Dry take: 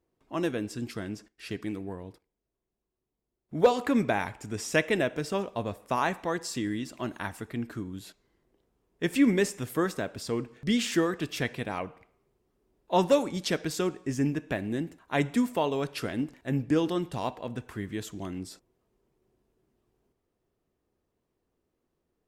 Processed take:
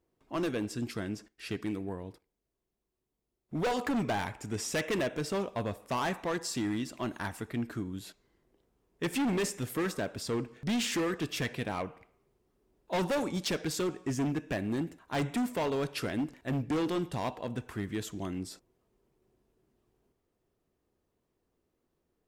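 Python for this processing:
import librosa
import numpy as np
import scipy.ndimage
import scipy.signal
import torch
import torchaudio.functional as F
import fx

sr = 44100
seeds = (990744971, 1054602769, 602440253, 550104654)

y = np.clip(x, -10.0 ** (-27.0 / 20.0), 10.0 ** (-27.0 / 20.0))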